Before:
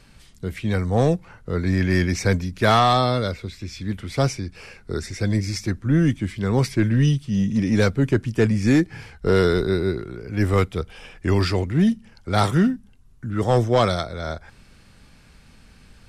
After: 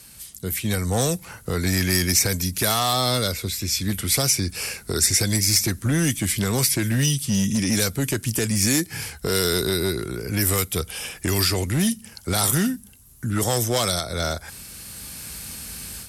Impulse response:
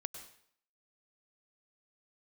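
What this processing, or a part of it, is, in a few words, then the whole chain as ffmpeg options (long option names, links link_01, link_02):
FM broadcast chain: -filter_complex "[0:a]highpass=frequency=44:width=0.5412,highpass=frequency=44:width=1.3066,dynaudnorm=framelen=640:gausssize=3:maxgain=11.5dB,acrossover=split=1600|3500[link_01][link_02][link_03];[link_01]acompressor=threshold=-17dB:ratio=4[link_04];[link_02]acompressor=threshold=-30dB:ratio=4[link_05];[link_03]acompressor=threshold=-29dB:ratio=4[link_06];[link_04][link_05][link_06]amix=inputs=3:normalize=0,aemphasis=mode=production:type=50fm,alimiter=limit=-11.5dB:level=0:latency=1:release=161,asoftclip=type=hard:threshold=-15dB,lowpass=frequency=15000:width=0.5412,lowpass=frequency=15000:width=1.3066,aemphasis=mode=production:type=50fm,volume=-1dB"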